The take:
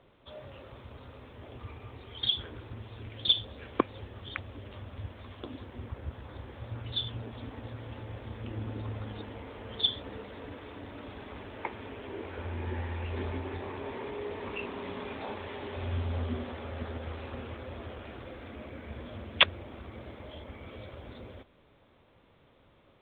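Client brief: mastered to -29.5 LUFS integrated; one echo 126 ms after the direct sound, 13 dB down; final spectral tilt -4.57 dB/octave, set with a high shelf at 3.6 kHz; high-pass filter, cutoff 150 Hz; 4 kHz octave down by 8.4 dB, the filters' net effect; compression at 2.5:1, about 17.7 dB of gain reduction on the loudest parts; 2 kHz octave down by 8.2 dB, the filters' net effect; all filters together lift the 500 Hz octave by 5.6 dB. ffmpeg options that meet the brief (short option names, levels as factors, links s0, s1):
-af "highpass=150,equalizer=f=500:t=o:g=7.5,equalizer=f=2000:t=o:g=-8,highshelf=f=3600:g=-6,equalizer=f=4000:t=o:g=-4,acompressor=threshold=0.00398:ratio=2.5,aecho=1:1:126:0.224,volume=8.41"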